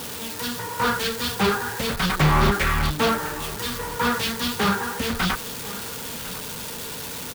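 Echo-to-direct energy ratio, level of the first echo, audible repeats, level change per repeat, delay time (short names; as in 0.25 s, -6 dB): -17.0 dB, -17.0 dB, 1, no steady repeat, 1.05 s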